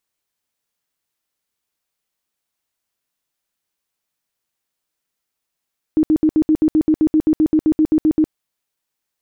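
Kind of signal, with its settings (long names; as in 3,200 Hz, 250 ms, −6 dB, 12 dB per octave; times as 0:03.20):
tone bursts 311 Hz, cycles 19, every 0.13 s, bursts 18, −10 dBFS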